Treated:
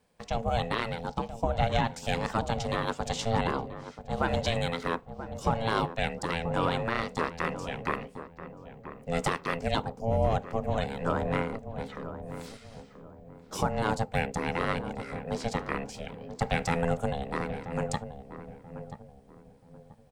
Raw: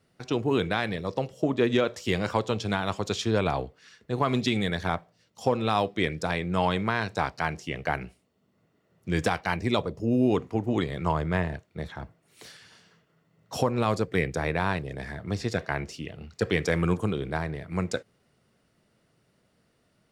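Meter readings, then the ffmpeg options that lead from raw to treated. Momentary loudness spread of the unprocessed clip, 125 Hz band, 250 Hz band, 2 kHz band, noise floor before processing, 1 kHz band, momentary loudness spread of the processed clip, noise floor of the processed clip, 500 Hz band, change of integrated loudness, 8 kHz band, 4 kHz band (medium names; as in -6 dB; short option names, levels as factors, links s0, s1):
11 LU, -2.5 dB, -5.5 dB, -3.0 dB, -69 dBFS, 0.0 dB, 16 LU, -54 dBFS, -3.0 dB, -3.0 dB, -0.5 dB, -2.5 dB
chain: -filter_complex "[0:a]aexciter=amount=1.2:drive=6.3:freq=7200,aeval=exprs='val(0)*sin(2*PI*340*n/s)':c=same,asplit=2[s0][s1];[s1]adelay=983,lowpass=f=870:p=1,volume=0.335,asplit=2[s2][s3];[s3]adelay=983,lowpass=f=870:p=1,volume=0.36,asplit=2[s4][s5];[s5]adelay=983,lowpass=f=870:p=1,volume=0.36,asplit=2[s6][s7];[s7]adelay=983,lowpass=f=870:p=1,volume=0.36[s8];[s0][s2][s4][s6][s8]amix=inputs=5:normalize=0"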